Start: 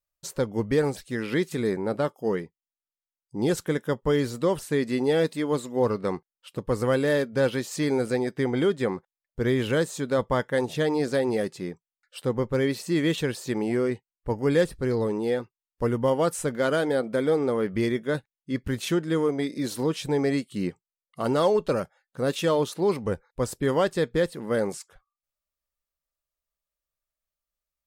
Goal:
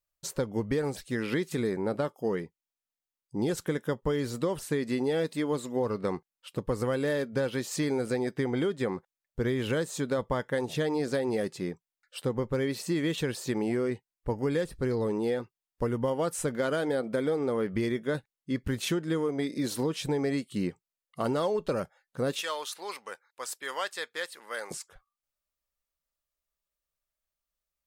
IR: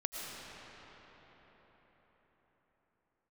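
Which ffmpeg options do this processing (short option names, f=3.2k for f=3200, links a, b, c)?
-filter_complex "[0:a]asettb=1/sr,asplit=3[a][b][c];[a]atrim=end=22.414[d];[b]atrim=start=22.41:end=24.71,asetpts=PTS-STARTPTS,afade=t=in:d=0.004:c=qsin,afade=t=out:st=2.296:d=0.004:c=qsin,highpass=1.2k[e];[c]atrim=start=24.706[f];[d][e]acrossfade=d=0.004:c1=hsin:c2=qsin[g];[g][f]acrossfade=d=0.004:c1=qsin:c2=hsin,acompressor=threshold=-25dB:ratio=6"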